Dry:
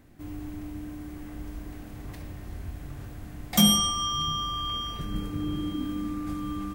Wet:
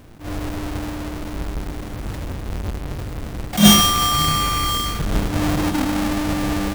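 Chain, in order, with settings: square wave that keeps the level; attacks held to a fixed rise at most 180 dB/s; trim +6.5 dB

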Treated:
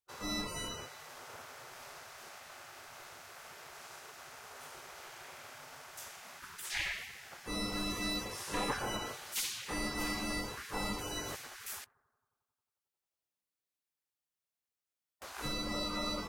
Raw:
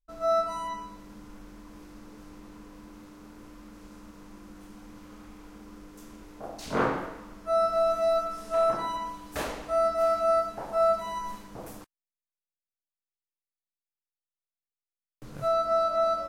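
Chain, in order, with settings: bucket-brigade echo 90 ms, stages 1024, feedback 71%, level -19 dB; spectral gate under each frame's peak -20 dB weak; waveshaping leveller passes 1; trim +4.5 dB

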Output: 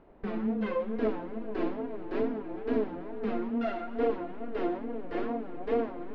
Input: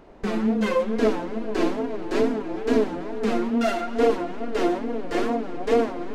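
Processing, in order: distance through air 360 m; trim -7.5 dB

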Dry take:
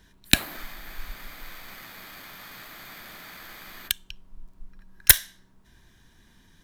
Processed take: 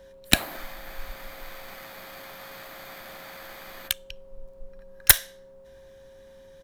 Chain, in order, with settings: peaking EQ 700 Hz +7 dB 1.1 oct; whistle 540 Hz -47 dBFS; harmony voices -5 st -18 dB; trim -1 dB

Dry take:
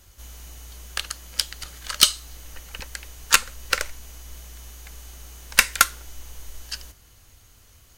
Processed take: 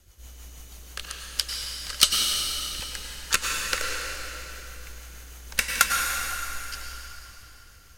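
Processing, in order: 0.52–1.45 s: crackle 190 per s -56 dBFS; rotary cabinet horn 6.3 Hz; plate-style reverb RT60 3.5 s, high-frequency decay 0.85×, pre-delay 85 ms, DRR -0.5 dB; trim -2.5 dB

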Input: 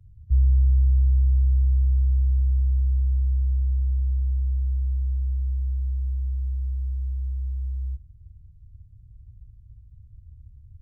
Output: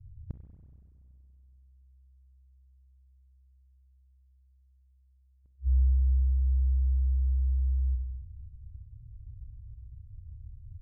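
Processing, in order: loudest bins only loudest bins 8; inverted gate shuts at -21 dBFS, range -41 dB; spring tank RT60 2.5 s, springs 32/47 ms, chirp 50 ms, DRR 7.5 dB

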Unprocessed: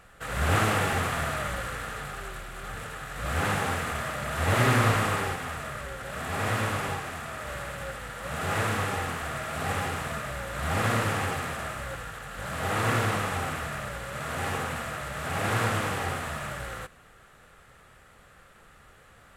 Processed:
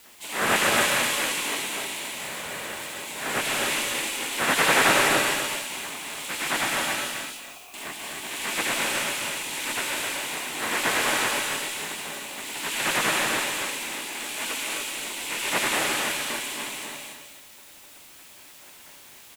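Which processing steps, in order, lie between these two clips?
spectral gate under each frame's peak -15 dB weak; bass shelf 91 Hz -11.5 dB; frequency shift -33 Hz; 7.11–7.74 s: vowel filter a; in parallel at -10.5 dB: word length cut 8-bit, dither triangular; on the sum: delay 254 ms -7 dB; gated-style reverb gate 320 ms rising, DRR 1.5 dB; trim +5.5 dB

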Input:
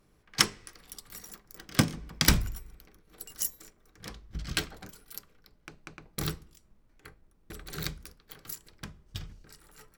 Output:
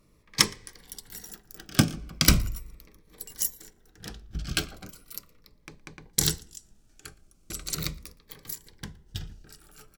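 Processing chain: 6.13–7.75 s: peaking EQ 7.2 kHz +15 dB 1.7 oct; echo from a far wall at 20 m, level -26 dB; Shepard-style phaser falling 0.38 Hz; trim +3.5 dB

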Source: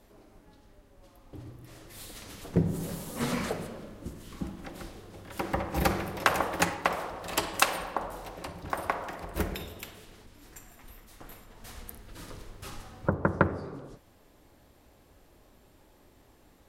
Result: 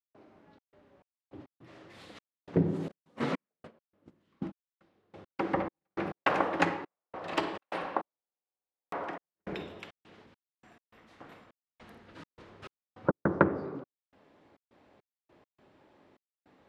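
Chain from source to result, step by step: band-pass 150–2900 Hz; hum notches 60/120/180/240/300/360/420/480 Hz; 2.88–5.14 s: gate -38 dBFS, range -22 dB; trance gate ".xxx.xx..x.xxxx." 103 bpm -60 dB; dynamic bell 320 Hz, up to +5 dB, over -48 dBFS, Q 1.5; buffer glitch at 8.18 s, samples 2048, times 15

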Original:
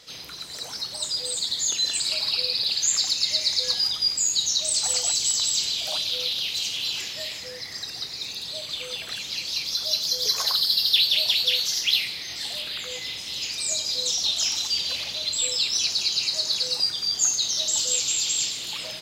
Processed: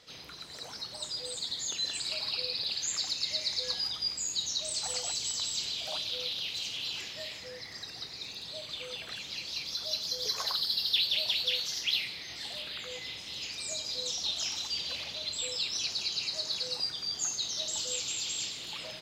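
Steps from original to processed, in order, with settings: treble shelf 4.8 kHz -10 dB; trim -4.5 dB

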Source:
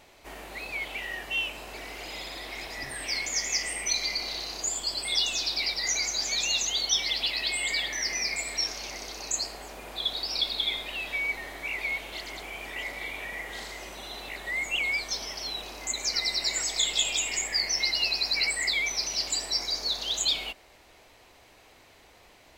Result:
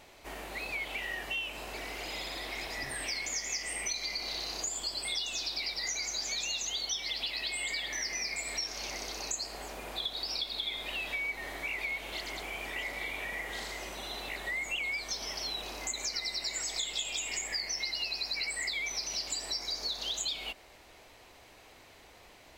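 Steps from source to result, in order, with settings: compression 4:1, threshold -33 dBFS, peak gain reduction 11 dB

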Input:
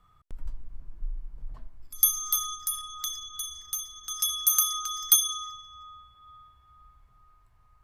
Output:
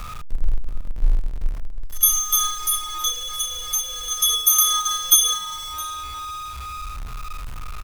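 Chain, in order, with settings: jump at every zero crossing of -30 dBFS; gate -29 dBFS, range -8 dB; harmonic-percussive split percussive -12 dB; in parallel at -1 dB: compression, threshold -34 dBFS, peak gain reduction 17 dB; on the sum: bass shelf 60 Hz +6.5 dB; delay 664 ms -20 dB; trim +5.5 dB

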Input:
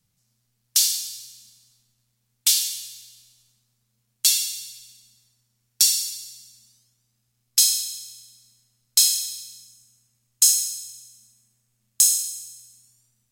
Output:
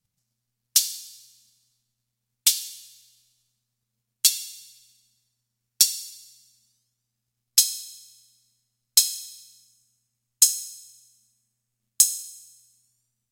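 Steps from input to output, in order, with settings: transient shaper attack +11 dB, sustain -2 dB; trim -9 dB

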